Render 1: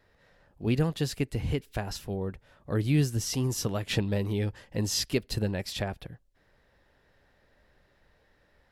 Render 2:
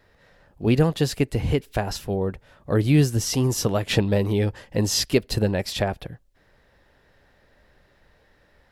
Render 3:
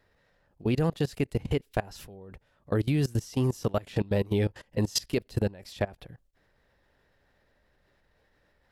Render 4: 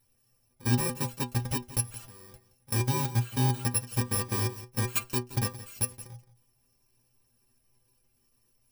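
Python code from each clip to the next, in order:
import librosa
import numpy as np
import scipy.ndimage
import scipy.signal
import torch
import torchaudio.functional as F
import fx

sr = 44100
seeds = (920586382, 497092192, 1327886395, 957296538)

y1 = fx.dynamic_eq(x, sr, hz=610.0, q=0.77, threshold_db=-45.0, ratio=4.0, max_db=4)
y1 = y1 * librosa.db_to_amplitude(6.0)
y2 = fx.level_steps(y1, sr, step_db=22)
y2 = y2 * librosa.db_to_amplitude(-2.0)
y3 = fx.bit_reversed(y2, sr, seeds[0], block=64)
y3 = fx.stiff_resonator(y3, sr, f0_hz=120.0, decay_s=0.23, stiffness=0.008)
y3 = y3 + 10.0 ** (-16.0 / 20.0) * np.pad(y3, (int(172 * sr / 1000.0), 0))[:len(y3)]
y3 = y3 * librosa.db_to_amplitude(8.0)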